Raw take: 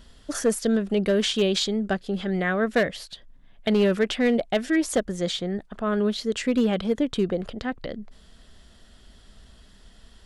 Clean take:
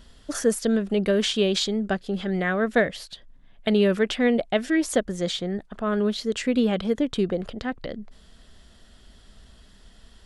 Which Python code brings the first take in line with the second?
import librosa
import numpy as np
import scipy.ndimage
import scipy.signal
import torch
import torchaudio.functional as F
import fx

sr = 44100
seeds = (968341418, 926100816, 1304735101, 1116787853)

y = fx.fix_declip(x, sr, threshold_db=-14.5)